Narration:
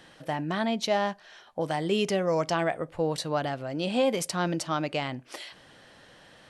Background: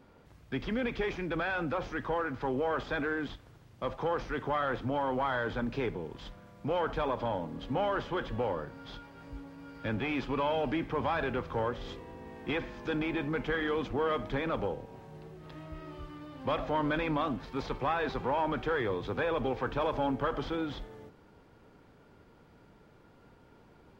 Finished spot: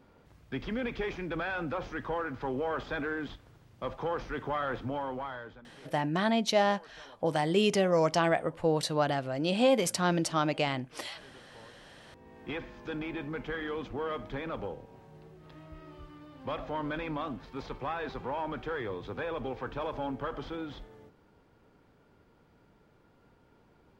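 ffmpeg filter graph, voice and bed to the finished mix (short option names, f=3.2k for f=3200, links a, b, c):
-filter_complex "[0:a]adelay=5650,volume=0.5dB[a];[1:a]volume=16.5dB,afade=t=out:st=4.81:d=0.82:silence=0.0891251,afade=t=in:st=11.91:d=0.53:silence=0.125893[b];[a][b]amix=inputs=2:normalize=0"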